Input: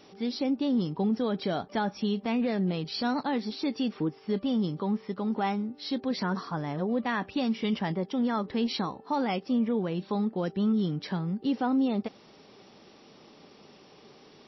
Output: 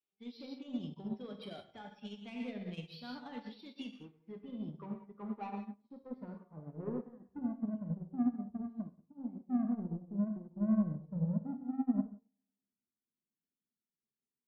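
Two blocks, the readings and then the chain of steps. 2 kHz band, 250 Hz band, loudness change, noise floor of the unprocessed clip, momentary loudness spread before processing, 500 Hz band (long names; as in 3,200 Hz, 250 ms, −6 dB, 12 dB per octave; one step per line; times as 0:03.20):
−18.5 dB, −9.0 dB, −10.0 dB, −55 dBFS, 5 LU, −16.5 dB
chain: spectral dynamics exaggerated over time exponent 1.5
high-shelf EQ 4,900 Hz +5.5 dB
brickwall limiter −29.5 dBFS, peak gain reduction 9.5 dB
low-pass filter sweep 3,000 Hz → 240 Hz, 0:03.77–0:07.69
soft clipping −30.5 dBFS, distortion −12 dB
feedback echo with a low-pass in the loop 101 ms, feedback 64%, low-pass 3,700 Hz, level −16.5 dB
reverb whose tail is shaped and stops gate 220 ms flat, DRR 1.5 dB
expander for the loud parts 2.5 to 1, over −49 dBFS
level +1.5 dB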